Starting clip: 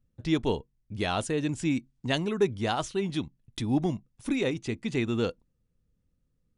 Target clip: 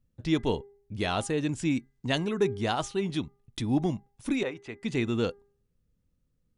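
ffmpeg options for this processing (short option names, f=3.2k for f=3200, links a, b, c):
-filter_complex "[0:a]asettb=1/sr,asplit=3[a][b][c];[a]atrim=end=4.434[d];[b]atrim=start=4.43:end=4.83,asetpts=PTS-STARTPTS,afade=t=in:d=0.004:c=qsin,afade=t=out:st=0.396:d=0.004:c=qsin,acrossover=split=490 2600:gain=0.224 1 0.2[e][f][g];[e][f][g]amix=inputs=3:normalize=0[h];[c]atrim=start=4.826[i];[d][h]acrossfade=d=0.004:c1=hsin:c2=qsin[j];[j][i]acrossfade=d=0.004:c1=qsin:c2=hsin,bandreject=f=403.3:t=h:w=4,bandreject=f=806.6:t=h:w=4,bandreject=f=1.2099k:t=h:w=4,bandreject=f=1.6132k:t=h:w=4,bandreject=f=2.0165k:t=h:w=4"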